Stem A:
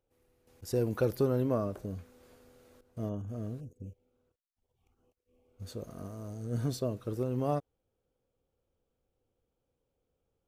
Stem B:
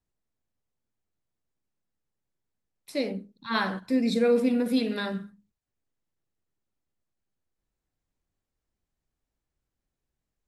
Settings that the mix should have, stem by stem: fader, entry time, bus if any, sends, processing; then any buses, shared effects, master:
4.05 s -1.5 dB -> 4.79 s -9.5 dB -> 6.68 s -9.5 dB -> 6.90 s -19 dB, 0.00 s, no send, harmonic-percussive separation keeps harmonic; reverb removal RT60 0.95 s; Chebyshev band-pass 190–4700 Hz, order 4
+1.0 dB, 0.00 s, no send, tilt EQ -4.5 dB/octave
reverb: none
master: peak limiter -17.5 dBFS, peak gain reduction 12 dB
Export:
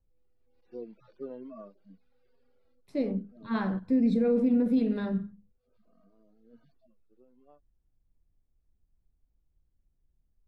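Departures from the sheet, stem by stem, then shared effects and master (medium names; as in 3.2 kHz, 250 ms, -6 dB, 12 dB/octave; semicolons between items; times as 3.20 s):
stem A -1.5 dB -> -8.5 dB; stem B +1.0 dB -> -7.0 dB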